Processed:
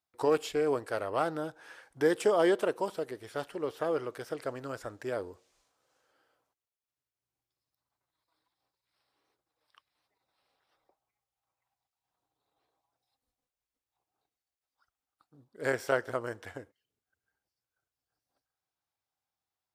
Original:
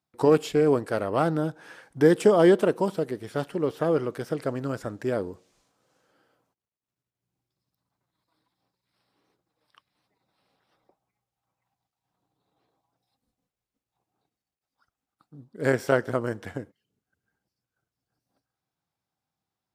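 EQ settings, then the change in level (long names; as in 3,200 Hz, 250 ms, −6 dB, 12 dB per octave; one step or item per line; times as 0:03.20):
parametric band 180 Hz −13.5 dB 1.6 octaves
−3.5 dB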